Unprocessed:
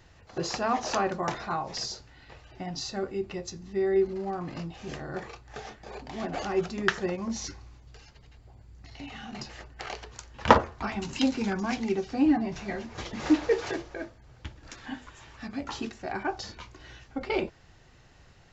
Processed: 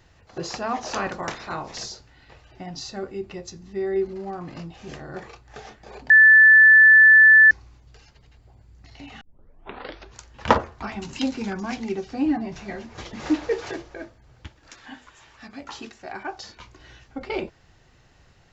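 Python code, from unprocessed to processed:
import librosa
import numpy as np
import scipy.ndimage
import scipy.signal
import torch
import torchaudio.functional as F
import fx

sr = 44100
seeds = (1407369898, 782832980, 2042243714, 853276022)

y = fx.spec_clip(x, sr, under_db=13, at=(0.94, 1.88), fade=0.02)
y = fx.low_shelf(y, sr, hz=340.0, db=-8.5, at=(14.47, 16.6))
y = fx.edit(y, sr, fx.bleep(start_s=6.1, length_s=1.41, hz=1750.0, db=-8.0),
    fx.tape_start(start_s=9.21, length_s=0.95), tone=tone)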